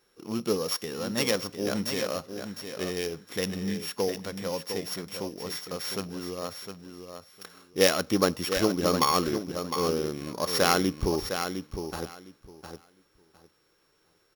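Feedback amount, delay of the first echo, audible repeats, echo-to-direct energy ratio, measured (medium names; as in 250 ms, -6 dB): 18%, 708 ms, 2, -8.0 dB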